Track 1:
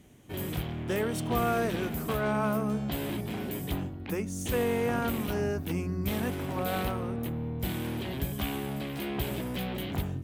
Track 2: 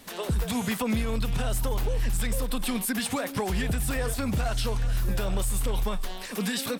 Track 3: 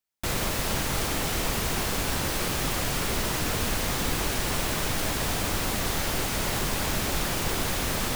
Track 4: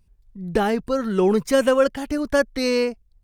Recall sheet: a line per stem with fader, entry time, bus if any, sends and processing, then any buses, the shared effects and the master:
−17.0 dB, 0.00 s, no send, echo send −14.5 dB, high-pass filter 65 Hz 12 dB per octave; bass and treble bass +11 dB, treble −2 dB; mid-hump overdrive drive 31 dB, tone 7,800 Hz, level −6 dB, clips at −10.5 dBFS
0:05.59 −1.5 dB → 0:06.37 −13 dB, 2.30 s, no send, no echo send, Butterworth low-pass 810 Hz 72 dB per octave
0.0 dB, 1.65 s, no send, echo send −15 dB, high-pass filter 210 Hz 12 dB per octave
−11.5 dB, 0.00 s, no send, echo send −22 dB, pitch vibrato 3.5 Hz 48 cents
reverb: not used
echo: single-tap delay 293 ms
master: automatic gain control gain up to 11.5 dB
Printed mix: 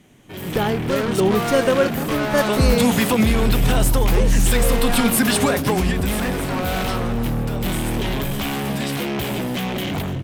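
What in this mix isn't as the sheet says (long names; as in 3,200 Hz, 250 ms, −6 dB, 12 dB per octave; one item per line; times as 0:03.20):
stem 2: missing Butterworth low-pass 810 Hz 72 dB per octave
stem 3: muted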